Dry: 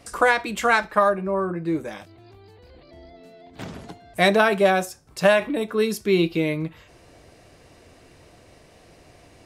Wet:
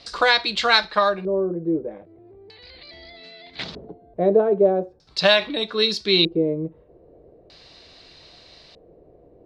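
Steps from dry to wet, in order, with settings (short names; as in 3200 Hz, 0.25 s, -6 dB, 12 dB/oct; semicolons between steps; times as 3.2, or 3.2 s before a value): 1.88–3.63 bell 2100 Hz +12 dB 0.76 oct; LFO low-pass square 0.4 Hz 460–4500 Hz; fifteen-band EQ 100 Hz -7 dB, 250 Hz -4 dB, 4000 Hz +11 dB; gain -1 dB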